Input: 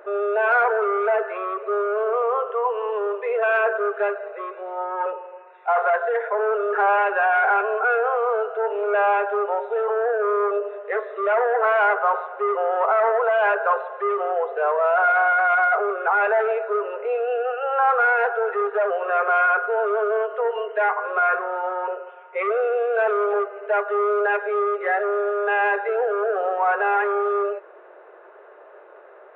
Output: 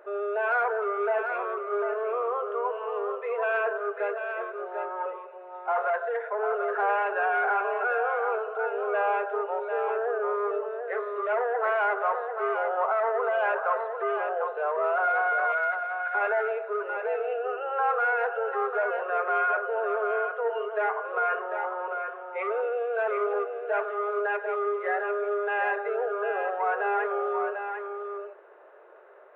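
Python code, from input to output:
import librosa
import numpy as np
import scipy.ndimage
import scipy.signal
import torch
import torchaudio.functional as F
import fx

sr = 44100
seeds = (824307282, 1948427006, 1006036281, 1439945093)

y = fx.brickwall_bandstop(x, sr, low_hz=250.0, high_hz=1400.0, at=(15.52, 16.15))
y = y + 10.0 ** (-6.5 / 20.0) * np.pad(y, (int(746 * sr / 1000.0), 0))[:len(y)]
y = y * 10.0 ** (-7.0 / 20.0)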